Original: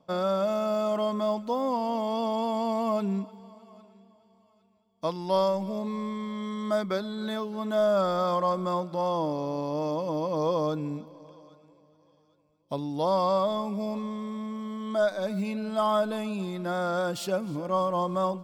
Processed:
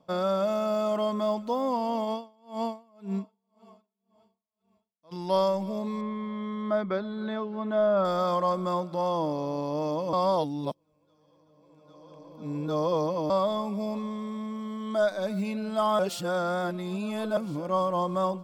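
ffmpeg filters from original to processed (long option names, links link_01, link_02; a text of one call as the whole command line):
ffmpeg -i in.wav -filter_complex "[0:a]asplit=3[link_01][link_02][link_03];[link_01]afade=type=out:start_time=2.04:duration=0.02[link_04];[link_02]aeval=exprs='val(0)*pow(10,-35*(0.5-0.5*cos(2*PI*1.9*n/s))/20)':channel_layout=same,afade=type=in:start_time=2.04:duration=0.02,afade=type=out:start_time=5.11:duration=0.02[link_05];[link_03]afade=type=in:start_time=5.11:duration=0.02[link_06];[link_04][link_05][link_06]amix=inputs=3:normalize=0,asettb=1/sr,asplit=3[link_07][link_08][link_09];[link_07]atrim=end=6.014[link_10];[link_08]atrim=start=6.01:end=8.05,asetpts=PTS-STARTPTS,afade=type=in:duration=0.004:curve=qsin,afade=type=out:start_time=2.036:duration=0.004:curve=qsin,lowpass=2500[link_11];[link_09]atrim=start=8.046[link_12];[link_10][link_11]acrossfade=duration=0.004:curve1=hsin:curve2=qsin[link_13];[link_13][link_12]acrossfade=duration=0.004:curve1=qsin:curve2=hsin,asplit=5[link_14][link_15][link_16][link_17][link_18];[link_14]atrim=end=10.132[link_19];[link_15]atrim=start=10.128:end=13.302,asetpts=PTS-STARTPTS,areverse[link_20];[link_16]atrim=start=13.298:end=15.992[link_21];[link_17]atrim=start=15.988:end=17.372,asetpts=PTS-STARTPTS,areverse[link_22];[link_18]atrim=start=17.368[link_23];[link_19][link_20]acrossfade=duration=0.004:curve1=hsin:curve2=hsin[link_24];[link_24][link_21]acrossfade=duration=0.004:curve1=hsin:curve2=hsin[link_25];[link_25][link_22]acrossfade=duration=0.004:curve1=hsin:curve2=hsin[link_26];[link_26][link_23]acrossfade=duration=0.004:curve1=hsin:curve2=hsin" out.wav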